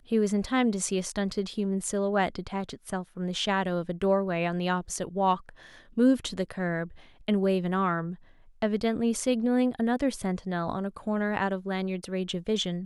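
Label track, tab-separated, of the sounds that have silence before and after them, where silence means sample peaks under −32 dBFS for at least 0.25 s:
5.970000	6.840000	sound
7.280000	8.130000	sound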